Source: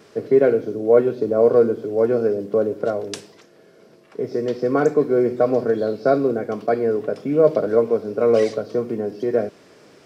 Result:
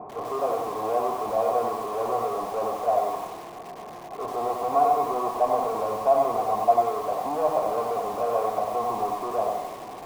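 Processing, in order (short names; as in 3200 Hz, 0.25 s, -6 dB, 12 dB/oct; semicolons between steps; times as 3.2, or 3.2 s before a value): low-pass opened by the level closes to 310 Hz, open at -13 dBFS; power-law curve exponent 0.35; vocal tract filter a; lo-fi delay 92 ms, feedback 35%, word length 7-bit, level -3 dB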